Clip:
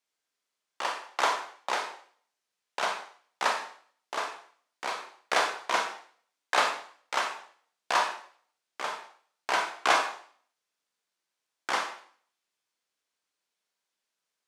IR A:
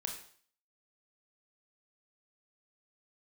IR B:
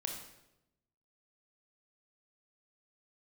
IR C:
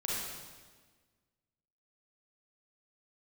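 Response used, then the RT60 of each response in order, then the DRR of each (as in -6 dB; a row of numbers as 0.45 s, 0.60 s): A; 0.50 s, 0.90 s, 1.5 s; 2.0 dB, 1.5 dB, -6.0 dB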